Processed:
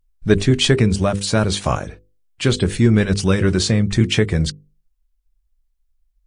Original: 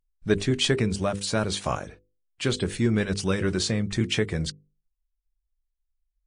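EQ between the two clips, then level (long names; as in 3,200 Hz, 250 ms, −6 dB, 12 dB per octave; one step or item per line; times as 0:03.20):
low-shelf EQ 150 Hz +7 dB
+6.5 dB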